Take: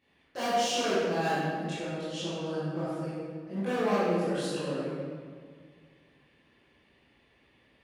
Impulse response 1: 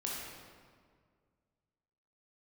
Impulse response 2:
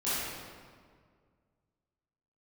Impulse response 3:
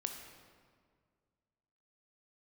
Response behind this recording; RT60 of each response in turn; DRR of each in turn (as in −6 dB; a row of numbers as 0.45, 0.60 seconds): 2; 1.9, 1.9, 1.9 seconds; −4.5, −13.5, 4.0 decibels